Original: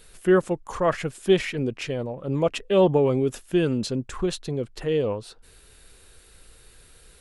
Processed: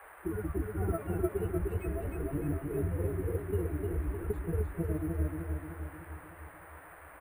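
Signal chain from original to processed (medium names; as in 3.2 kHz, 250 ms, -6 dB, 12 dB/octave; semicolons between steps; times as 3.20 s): octave divider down 2 oct, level 0 dB; reverberation RT60 3.1 s, pre-delay 7 ms, DRR 12.5 dB; gain riding 0.5 s; pitch-class resonator D#, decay 0.51 s; reverb removal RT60 1.6 s; fifteen-band graphic EQ 160 Hz -12 dB, 400 Hz +9 dB, 2.5 kHz -10 dB, 6.3 kHz -11 dB; compression, threshold -30 dBFS, peak gain reduction 10.5 dB; comb 4.8 ms, depth 39%; granulator 100 ms, grains 20 per s, pitch spread up and down by 3 st; feedback delay 304 ms, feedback 55%, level -3.5 dB; band noise 440–1900 Hz -55 dBFS; careless resampling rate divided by 4×, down none, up hold; trim +2.5 dB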